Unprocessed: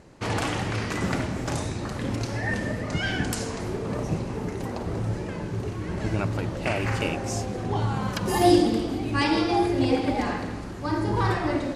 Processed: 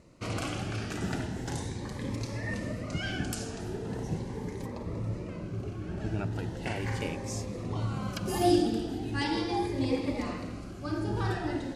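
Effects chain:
0:04.66–0:06.36: high-shelf EQ 3,900 Hz −7 dB
phaser whose notches keep moving one way rising 0.39 Hz
level −5.5 dB

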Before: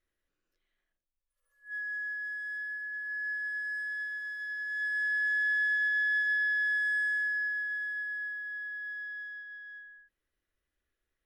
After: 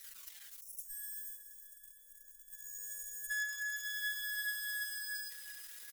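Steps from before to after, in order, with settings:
spike at every zero crossing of −37 dBFS
harmonic generator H 5 −20 dB, 6 −25 dB, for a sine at −24 dBFS
slap from a distant wall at 160 metres, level −21 dB
tempo change 1.9×
comb filter 6.2 ms, depth 73%
noise gate −41 dBFS, range −7 dB
flanger 0.45 Hz, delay 0.5 ms, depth 2 ms, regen +56%
on a send: repeating echo 373 ms, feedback 40%, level −11.5 dB
on the sum: gain on a spectral selection 0:00.61–0:03.30, 660–5,200 Hz −22 dB
level +4 dB

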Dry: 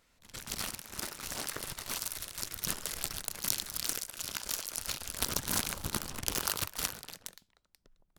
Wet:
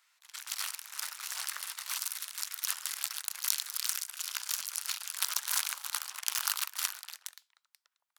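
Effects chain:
high-pass filter 1,000 Hz 24 dB per octave
level +1.5 dB

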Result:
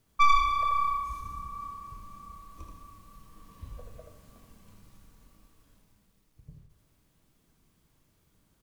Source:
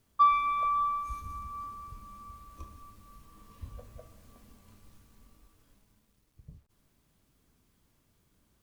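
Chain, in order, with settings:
stylus tracing distortion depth 0.14 ms
on a send: echo with shifted repeats 80 ms, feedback 30%, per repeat −31 Hz, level −5 dB
on the sum: rectangular room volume 1,900 cubic metres, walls furnished, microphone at 0.59 metres

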